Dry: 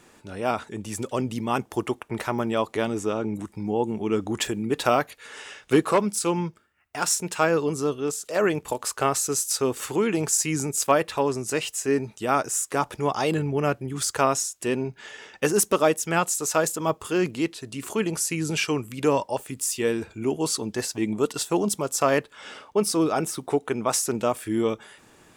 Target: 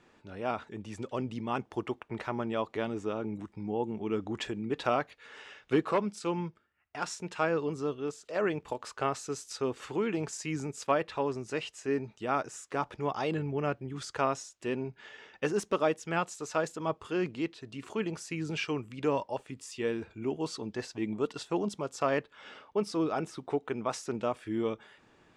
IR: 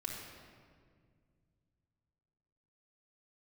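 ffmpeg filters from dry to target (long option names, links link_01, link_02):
-af "lowpass=4100,volume=-7.5dB"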